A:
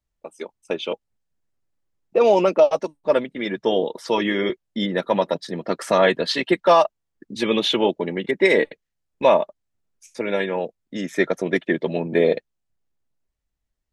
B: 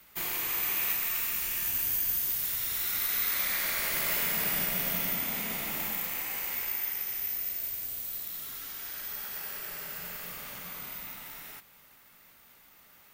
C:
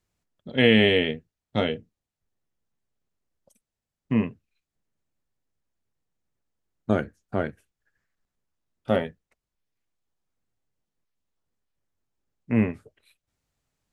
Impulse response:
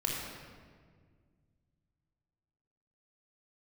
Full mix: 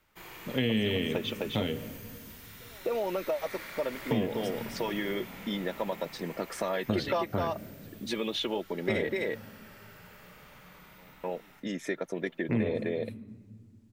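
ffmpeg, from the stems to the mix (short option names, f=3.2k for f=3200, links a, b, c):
-filter_complex "[0:a]acompressor=threshold=-29dB:ratio=2,adelay=450,volume=1dB,asplit=3[a][b][c];[a]atrim=end=9.16,asetpts=PTS-STARTPTS,afade=t=out:st=9.156:d=0.004:c=hsin[d];[b]atrim=start=9.16:end=10.98,asetpts=PTS-STARTPTS,volume=0[e];[c]atrim=start=10.98,asetpts=PTS-STARTPTS,afade=t=in:d=0.004:c=hsin[f];[d][e][f]concat=n=3:v=0:a=1,asplit=2[g][h];[h]volume=-5dB[i];[1:a]lowpass=f=2k:p=1,volume=-9dB,asplit=2[j][k];[k]volume=-8.5dB[l];[2:a]acrossover=split=350|3000[m][n][o];[n]acompressor=threshold=-31dB:ratio=6[p];[m][p][o]amix=inputs=3:normalize=0,volume=0dB,asplit=3[q][r][s];[r]volume=-17.5dB[t];[s]apad=whole_len=634110[u];[g][u]sidechaingate=range=-33dB:threshold=-52dB:ratio=16:detection=peak[v];[3:a]atrim=start_sample=2205[w];[l][t]amix=inputs=2:normalize=0[x];[x][w]afir=irnorm=-1:irlink=0[y];[i]aecho=0:1:257:1[z];[v][j][q][y][z]amix=inputs=5:normalize=0,acompressor=threshold=-27dB:ratio=3"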